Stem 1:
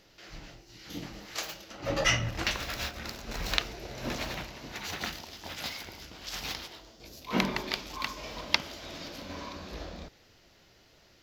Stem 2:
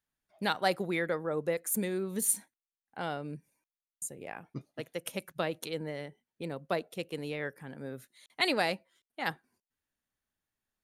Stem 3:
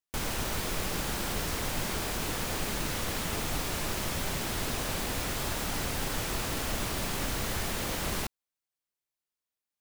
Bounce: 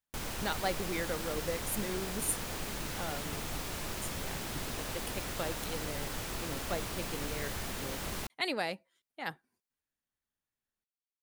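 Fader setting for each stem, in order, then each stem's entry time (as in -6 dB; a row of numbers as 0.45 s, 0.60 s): mute, -5.0 dB, -6.0 dB; mute, 0.00 s, 0.00 s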